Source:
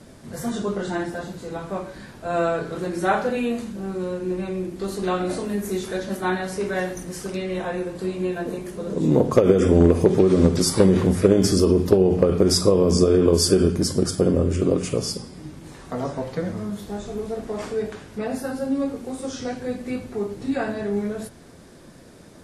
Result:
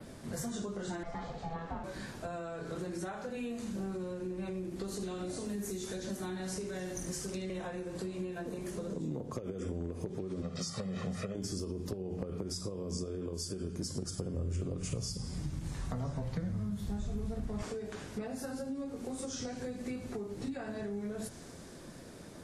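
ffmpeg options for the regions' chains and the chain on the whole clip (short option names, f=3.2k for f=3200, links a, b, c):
-filter_complex "[0:a]asettb=1/sr,asplit=3[a][b][c];[a]atrim=end=1.034[d];[b]atrim=start=1.03:end=1.84,asetpts=PTS-STARTPTS,afade=t=in:d=0.004:c=qsin,afade=t=out:st=0.806:d=0.004:c=qsin,lowpass=3.6k,aecho=1:1:2.2:0.58,atrim=end_sample=35721,aeval=exprs='val(0)*sin(2*PI*330*n/s)':c=same[e];[c]atrim=start=1.836[f];[d][e]acrossfade=d=0.004:c1=hsin:c2=qsin[g];[g][f]acrossfade=d=0.004:c1=qsin:c2=hsin,asettb=1/sr,asplit=3[h][i][j];[h]atrim=end=4.934[k];[i]atrim=start=4.93:end=7.5,asetpts=PTS-STARTPTS,afade=t=in:d=0.004:c=qsin,afade=t=out:st=2.566:d=0.004:c=qsin,acrossover=split=430|3000[l][m][n];[m]acompressor=threshold=-37dB:ratio=2.5:attack=3.2:release=140:knee=2.83:detection=peak[o];[l][o][n]amix=inputs=3:normalize=0,aecho=1:1:74:0.299,atrim=end_sample=113337[p];[j]atrim=start=7.496[q];[k][p]acrossfade=d=0.004:c1=hsin:c2=qsin[r];[r][q]acrossfade=d=0.004:c1=qsin:c2=hsin,asettb=1/sr,asplit=3[s][t][u];[s]atrim=end=10.424[v];[t]atrim=start=10.42:end=11.35,asetpts=PTS-STARTPTS,afade=t=in:d=0.004:c=qsin,afade=t=out:st=0.926:d=0.004:c=qsin,highpass=170,lowpass=5k,equalizer=f=430:t=o:w=0.99:g=-6.5,aecho=1:1:1.6:0.94,atrim=end_sample=41013[w];[u]atrim=start=11.346[x];[v][w]acrossfade=d=0.004:c1=hsin:c2=qsin[y];[y][x]acrossfade=d=0.004:c1=qsin:c2=hsin,asettb=1/sr,asplit=3[z][aa][ab];[z]atrim=end=13.874[ac];[aa]atrim=start=13.87:end=17.63,asetpts=PTS-STARTPTS,afade=t=in:d=0.004:c=qsin,afade=t=out:st=3.756:d=0.004:c=qsin,bandreject=f=307.2:t=h:w=4,bandreject=f=614.4:t=h:w=4,bandreject=f=921.6:t=h:w=4,bandreject=f=1.2288k:t=h:w=4,bandreject=f=1.536k:t=h:w=4,bandreject=f=1.8432k:t=h:w=4,bandreject=f=2.1504k:t=h:w=4,bandreject=f=2.4576k:t=h:w=4,bandreject=f=2.7648k:t=h:w=4,bandreject=f=3.072k:t=h:w=4,bandreject=f=3.3792k:t=h:w=4,bandreject=f=3.6864k:t=h:w=4,bandreject=f=3.9936k:t=h:w=4,bandreject=f=4.3008k:t=h:w=4,bandreject=f=4.608k:t=h:w=4,bandreject=f=4.9152k:t=h:w=4,bandreject=f=5.2224k:t=h:w=4,bandreject=f=5.5296k:t=h:w=4,bandreject=f=5.8368k:t=h:w=4,bandreject=f=6.144k:t=h:w=4,bandreject=f=6.4512k:t=h:w=4,bandreject=f=6.7584k:t=h:w=4,bandreject=f=7.0656k:t=h:w=4,bandreject=f=7.3728k:t=h:w=4,bandreject=f=7.68k:t=h:w=4,bandreject=f=7.9872k:t=h:w=4,bandreject=f=8.2944k:t=h:w=4,bandreject=f=8.6016k:t=h:w=4,bandreject=f=8.9088k:t=h:w=4,bandreject=f=9.216k:t=h:w=4,asubboost=boost=10:cutoff=140[ad];[ab]atrim=start=17.626[ae];[ac][ad]acrossfade=d=0.004:c1=hsin:c2=qsin[af];[af][ae]acrossfade=d=0.004:c1=qsin:c2=hsin,acompressor=threshold=-30dB:ratio=6,adynamicequalizer=threshold=0.00158:dfrequency=6700:dqfactor=1.2:tfrequency=6700:tqfactor=1.2:attack=5:release=100:ratio=0.375:range=4:mode=boostabove:tftype=bell,acrossover=split=200[ag][ah];[ah]acompressor=threshold=-35dB:ratio=6[ai];[ag][ai]amix=inputs=2:normalize=0,volume=-3dB"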